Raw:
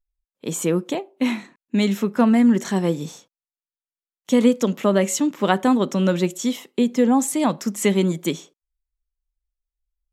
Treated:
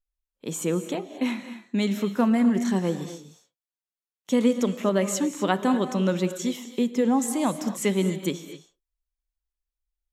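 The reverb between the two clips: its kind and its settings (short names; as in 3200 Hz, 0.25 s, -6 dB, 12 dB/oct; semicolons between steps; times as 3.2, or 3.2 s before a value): non-linear reverb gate 0.28 s rising, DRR 10 dB; gain -5 dB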